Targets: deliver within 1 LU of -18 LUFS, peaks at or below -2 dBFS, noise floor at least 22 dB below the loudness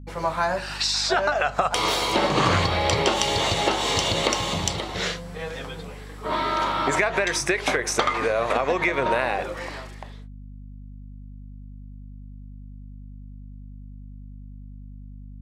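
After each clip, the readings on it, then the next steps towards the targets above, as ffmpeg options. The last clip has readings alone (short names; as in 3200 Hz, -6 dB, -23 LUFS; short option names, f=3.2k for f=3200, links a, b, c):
hum 50 Hz; harmonics up to 250 Hz; hum level -37 dBFS; loudness -23.0 LUFS; peak -6.0 dBFS; loudness target -18.0 LUFS
-> -af "bandreject=f=50:t=h:w=6,bandreject=f=100:t=h:w=6,bandreject=f=150:t=h:w=6,bandreject=f=200:t=h:w=6,bandreject=f=250:t=h:w=6"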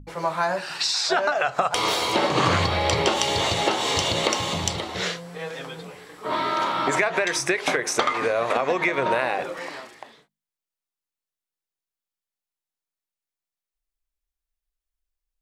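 hum none; loudness -23.0 LUFS; peak -6.0 dBFS; loudness target -18.0 LUFS
-> -af "volume=5dB,alimiter=limit=-2dB:level=0:latency=1"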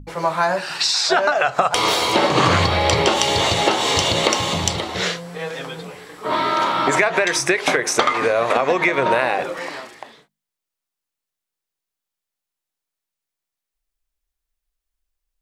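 loudness -18.0 LUFS; peak -2.0 dBFS; noise floor -85 dBFS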